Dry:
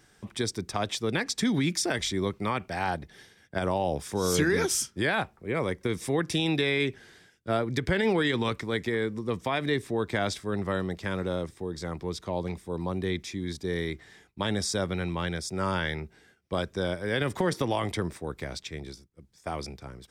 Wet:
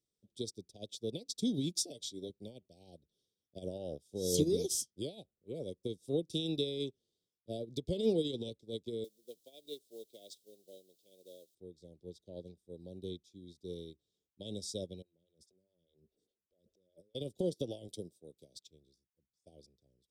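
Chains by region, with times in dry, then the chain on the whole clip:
1.77–2.3 low shelf 150 Hz -8.5 dB + comb 7 ms, depth 39%
9.04–11.55 HPF 450 Hz + requantised 8-bit, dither triangular + bell 1100 Hz -7.5 dB 0.94 oct
15.02–17.15 negative-ratio compressor -41 dBFS + photocell phaser 4.9 Hz
17.88–18.67 HPF 110 Hz + high shelf 5700 Hz +8 dB + mismatched tape noise reduction encoder only
whole clip: elliptic band-stop 560–3500 Hz, stop band 60 dB; low shelf 180 Hz -5.5 dB; upward expander 2.5:1, over -42 dBFS

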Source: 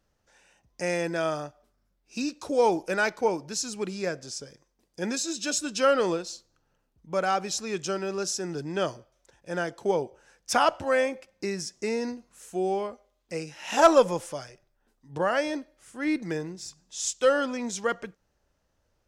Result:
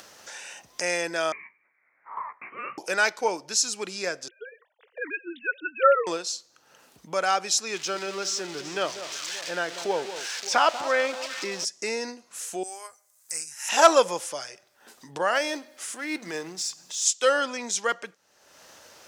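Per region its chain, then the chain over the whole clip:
1.32–2.78 steep high-pass 1400 Hz 48 dB/oct + inverted band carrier 3600 Hz + doubler 18 ms -7 dB
4.28–6.07 sine-wave speech + bell 1600 Hz +4.5 dB 0.48 oct
7.75–11.65 switching spikes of -22.5 dBFS + air absorption 150 m + echo with dull and thin repeats by turns 0.191 s, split 1200 Hz, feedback 61%, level -11.5 dB
12.63–13.69 EQ curve 140 Hz 0 dB, 210 Hz -30 dB, 310 Hz -15 dB, 470 Hz -19 dB, 870 Hz -10 dB, 1700 Hz -3 dB, 3300 Hz -14 dB, 8400 Hz +14 dB + upward expander, over -55 dBFS
15.35–17.06 G.711 law mismatch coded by mu + notches 50/100/150/200/250 Hz + transient shaper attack -12 dB, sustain -1 dB
whole clip: high shelf 4300 Hz +8.5 dB; upward compressor, threshold -29 dBFS; weighting filter A; gain +2 dB

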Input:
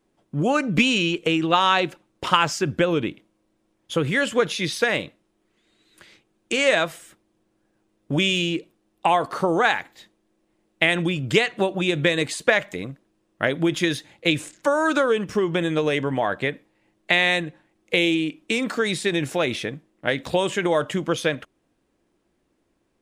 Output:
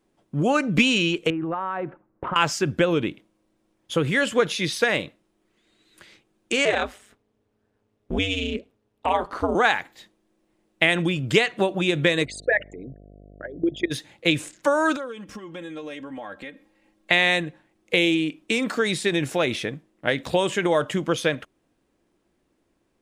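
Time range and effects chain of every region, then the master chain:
1.3–2.36 LPF 1600 Hz 24 dB/oct + compressor, threshold -24 dBFS
6.65–9.55 LPF 4000 Hz 6 dB/oct + ring modulator 100 Hz
12.24–13.9 formant sharpening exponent 3 + level quantiser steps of 19 dB + buzz 50 Hz, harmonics 14, -48 dBFS
14.96–17.11 compressor 2:1, threshold -46 dBFS + comb 3.7 ms, depth 69%
whole clip: dry

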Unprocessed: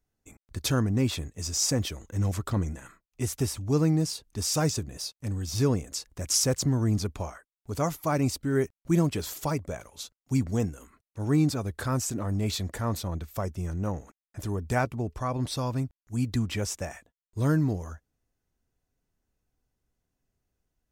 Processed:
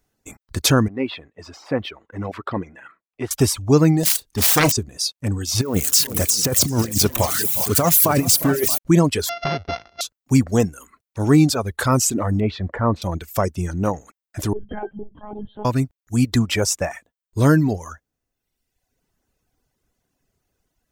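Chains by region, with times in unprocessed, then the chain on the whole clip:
0.88–3.31 HPF 460 Hz 6 dB/oct + de-esser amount 60% + air absorption 420 m
4.03–4.72 self-modulated delay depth 0.73 ms + high shelf 2500 Hz +7.5 dB + doubler 34 ms -11 dB
5.61–8.78 switching spikes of -26 dBFS + negative-ratio compressor -27 dBFS, ratio -0.5 + tapped delay 0.241/0.354/0.39/0.628 s -17/-14.5/-10.5/-13.5 dB
9.29–10.01 sample sorter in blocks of 64 samples + steep low-pass 6000 Hz 96 dB/oct + compressor 2.5:1, threshold -31 dBFS
12.4–13.02 LPF 1700 Hz + bell 740 Hz -2.5 dB 0.37 oct
14.53–15.65 notches 50/100/150/200 Hz + octave resonator G, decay 0.11 s + monotone LPC vocoder at 8 kHz 210 Hz
whole clip: reverb removal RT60 1.1 s; low shelf 130 Hz -7 dB; maximiser +17 dB; gain -4 dB

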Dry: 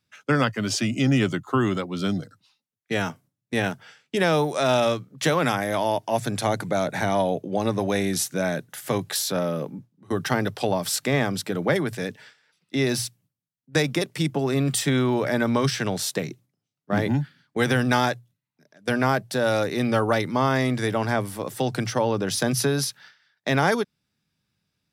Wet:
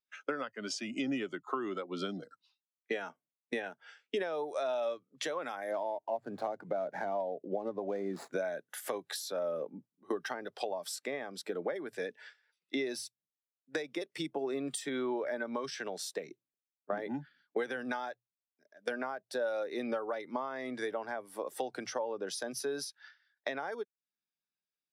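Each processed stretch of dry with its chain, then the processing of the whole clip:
5.71–8.33 median filter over 15 samples + HPF 82 Hz + low shelf 220 Hz +7 dB
whole clip: HPF 380 Hz 12 dB/oct; compressor 16:1, threshold -37 dBFS; spectral expander 1.5:1

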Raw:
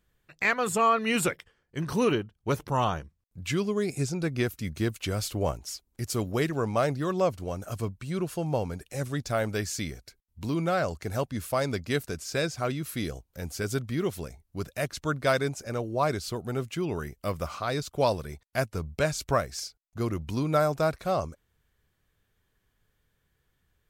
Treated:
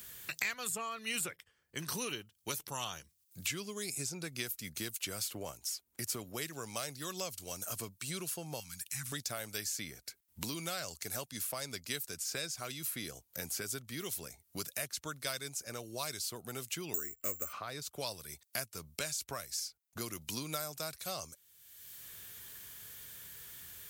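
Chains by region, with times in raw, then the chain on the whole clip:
8.6–9.12 Chebyshev band-stop 180–1300 Hz + compressor 2:1, threshold -35 dBFS
16.94–17.53 LPF 3000 Hz + fixed phaser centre 350 Hz, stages 4 + careless resampling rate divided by 6×, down none, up zero stuff
whole clip: HPF 70 Hz; pre-emphasis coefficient 0.9; three-band squash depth 100%; gain +1.5 dB

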